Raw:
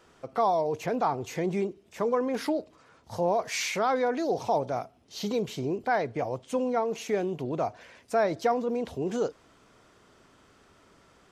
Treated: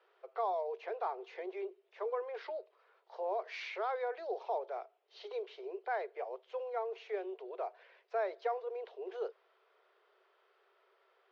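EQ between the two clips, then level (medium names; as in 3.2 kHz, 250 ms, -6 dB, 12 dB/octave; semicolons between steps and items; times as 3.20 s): Chebyshev high-pass 370 Hz, order 8; low-pass 4.4 kHz 24 dB/octave; distance through air 120 m; -9.0 dB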